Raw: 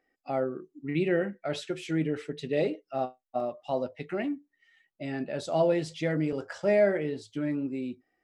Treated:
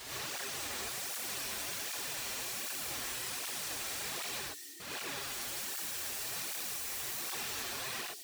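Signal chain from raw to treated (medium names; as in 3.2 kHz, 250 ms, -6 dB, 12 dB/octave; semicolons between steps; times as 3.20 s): spectrogram pixelated in time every 400 ms; FFT filter 210 Hz 0 dB, 400 Hz +13 dB, 2.4 kHz -1 dB, 4.2 kHz +10 dB, 6.4 kHz +3 dB; in parallel at -1 dB: peak limiter -39.5 dBFS, peak gain reduction 27 dB; on the sum: integer overflow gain 37 dB; on a send: feedback echo behind a high-pass 206 ms, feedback 63%, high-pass 5.6 kHz, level -5 dB; on the sum: gated-style reverb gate 140 ms rising, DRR -6.5 dB; cancelling through-zero flanger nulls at 1.3 Hz, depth 7.2 ms; trim -2.5 dB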